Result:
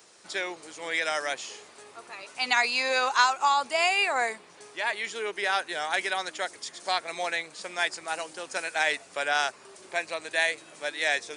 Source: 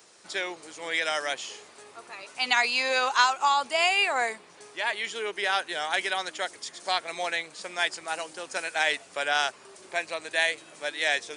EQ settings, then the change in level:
dynamic equaliser 3,100 Hz, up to −6 dB, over −45 dBFS, Q 5.9
0.0 dB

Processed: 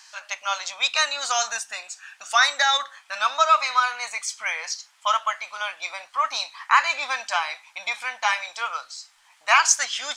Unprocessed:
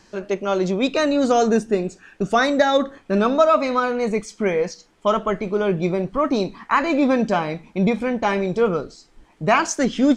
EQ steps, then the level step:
inverse Chebyshev high-pass filter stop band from 430 Hz, stop band 40 dB
high-shelf EQ 2,400 Hz +10 dB
0.0 dB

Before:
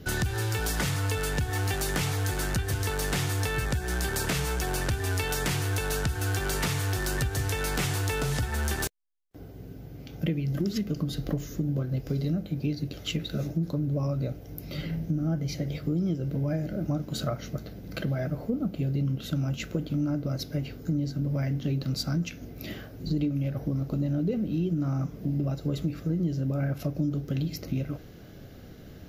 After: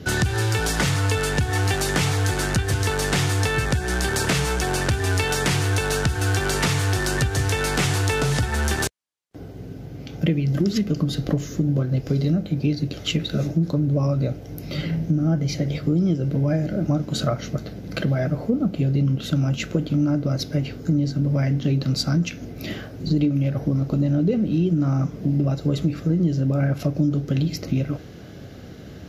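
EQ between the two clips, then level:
high-pass filter 62 Hz
low-pass filter 9,700 Hz 12 dB per octave
+7.5 dB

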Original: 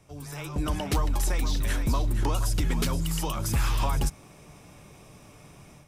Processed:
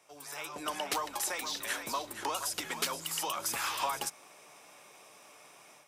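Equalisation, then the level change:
high-pass filter 610 Hz 12 dB per octave
0.0 dB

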